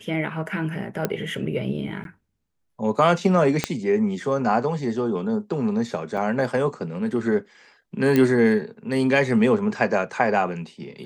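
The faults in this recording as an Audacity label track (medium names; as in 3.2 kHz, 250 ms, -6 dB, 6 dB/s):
1.050000	1.050000	pop -9 dBFS
2.040000	2.050000	dropout 12 ms
3.640000	3.640000	pop -6 dBFS
6.170000	6.180000	dropout 6 ms
8.160000	8.160000	pop -8 dBFS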